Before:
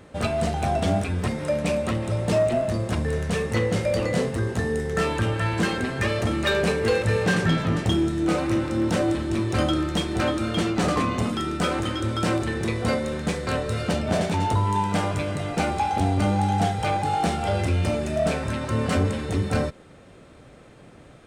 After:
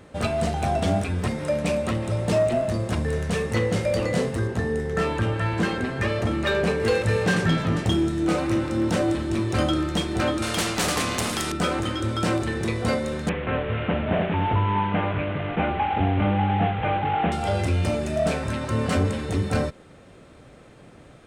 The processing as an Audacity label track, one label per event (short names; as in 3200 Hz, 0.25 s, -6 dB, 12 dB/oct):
4.470000	6.800000	high shelf 4000 Hz -7.5 dB
10.420000	11.520000	spectral compressor 2:1
13.290000	17.320000	delta modulation 16 kbps, step -27.5 dBFS